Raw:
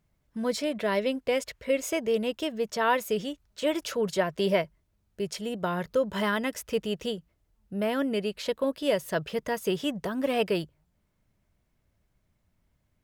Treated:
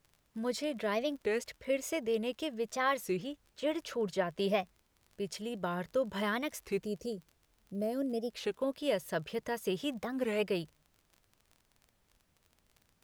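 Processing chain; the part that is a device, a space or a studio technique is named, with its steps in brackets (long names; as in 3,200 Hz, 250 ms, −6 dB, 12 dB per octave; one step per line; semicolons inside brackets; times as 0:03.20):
0:03.17–0:04.39: high-shelf EQ 5,000 Hz −7.5 dB
0:06.84–0:08.35: gain on a spectral selection 730–4,100 Hz −14 dB
warped LP (wow of a warped record 33 1/3 rpm, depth 250 cents; surface crackle 37 per second −40 dBFS; pink noise bed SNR 39 dB)
level −6 dB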